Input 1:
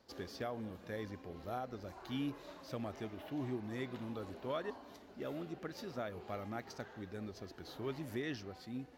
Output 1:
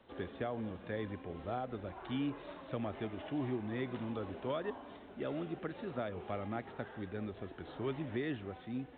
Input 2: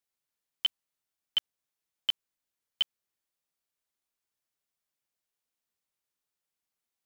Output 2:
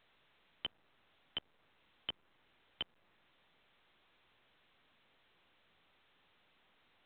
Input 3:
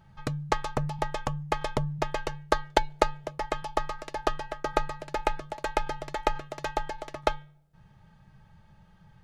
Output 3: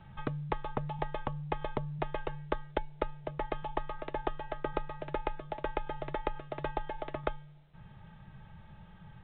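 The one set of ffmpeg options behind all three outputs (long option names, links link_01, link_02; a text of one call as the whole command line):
ffmpeg -i in.wav -filter_complex "[0:a]acrossover=split=300|950|2400[link_01][link_02][link_03][link_04];[link_01]acompressor=threshold=-41dB:ratio=4[link_05];[link_02]acompressor=threshold=-40dB:ratio=4[link_06];[link_03]acompressor=threshold=-51dB:ratio=4[link_07];[link_04]acompressor=threshold=-56dB:ratio=4[link_08];[link_05][link_06][link_07][link_08]amix=inputs=4:normalize=0,volume=4dB" -ar 8000 -c:a pcm_alaw out.wav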